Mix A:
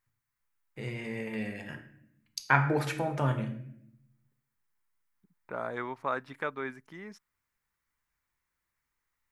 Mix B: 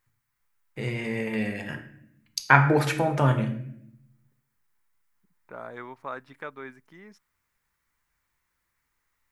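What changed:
first voice +7.0 dB; second voice -4.0 dB

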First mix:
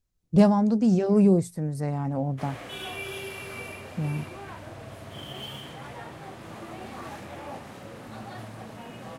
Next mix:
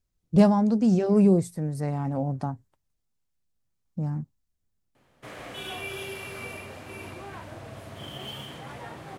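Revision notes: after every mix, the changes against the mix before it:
background: entry +2.85 s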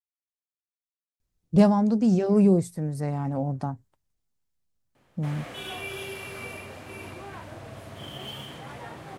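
speech: entry +1.20 s

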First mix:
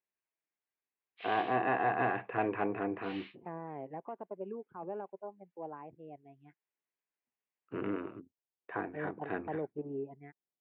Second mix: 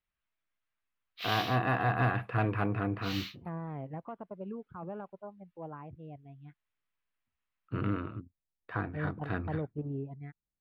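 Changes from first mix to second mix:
background +4.5 dB; master: remove speaker cabinet 290–2700 Hz, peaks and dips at 390 Hz +6 dB, 820 Hz +3 dB, 1300 Hz -8 dB

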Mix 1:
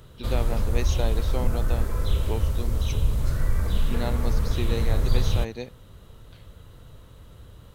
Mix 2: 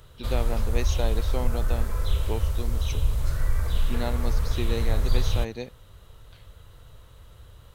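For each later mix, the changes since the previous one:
background: add bell 230 Hz -10 dB 1.6 oct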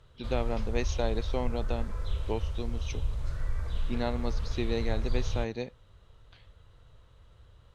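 background -7.5 dB; master: add air absorption 72 m

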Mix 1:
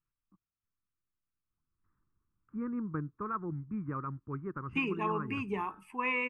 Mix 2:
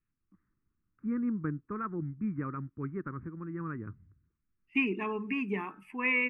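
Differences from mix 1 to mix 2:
first voice: entry -1.50 s; master: add graphic EQ 250/1000/2000/4000/8000 Hz +5/-7/+9/-4/-8 dB

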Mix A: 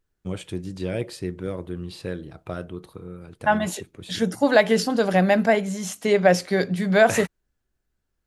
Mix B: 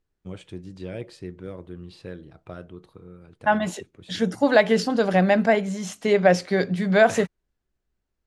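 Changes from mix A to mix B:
first voice -6.5 dB; master: add air absorption 53 m

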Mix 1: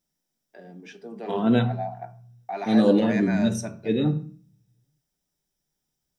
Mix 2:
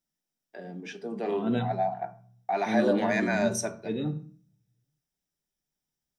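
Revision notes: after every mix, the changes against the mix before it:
first voice +4.0 dB; second voice -8.0 dB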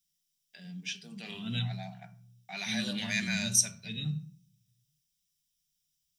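master: add EQ curve 180 Hz 0 dB, 320 Hz -25 dB, 930 Hz -18 dB, 1800 Hz -5 dB, 2900 Hz +9 dB

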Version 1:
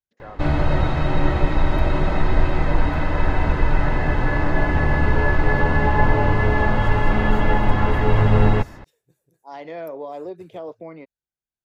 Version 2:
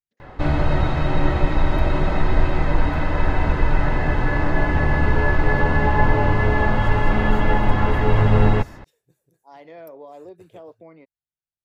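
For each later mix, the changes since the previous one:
first voice -8.0 dB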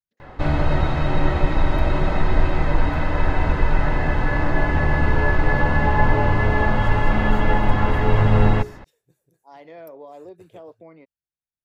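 background: add notches 60/120/180/240/300/360/420 Hz

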